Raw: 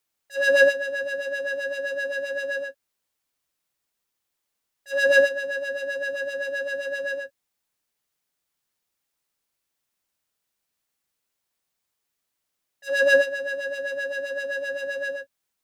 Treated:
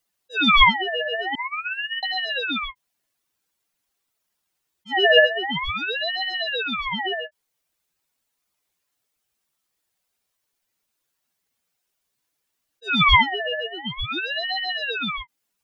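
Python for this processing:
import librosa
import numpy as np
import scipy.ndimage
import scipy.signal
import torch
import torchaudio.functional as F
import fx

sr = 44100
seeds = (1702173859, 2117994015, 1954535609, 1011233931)

y = fx.spec_expand(x, sr, power=2.2)
y = fx.cheby1_bandstop(y, sr, low_hz=680.0, high_hz=5900.0, order=5, at=(1.35, 2.03))
y = fx.fixed_phaser(y, sr, hz=1700.0, stages=4, at=(13.63, 14.07), fade=0.02)
y = fx.ring_lfo(y, sr, carrier_hz=1800.0, swing_pct=35, hz=0.48)
y = y * 10.0 ** (6.0 / 20.0)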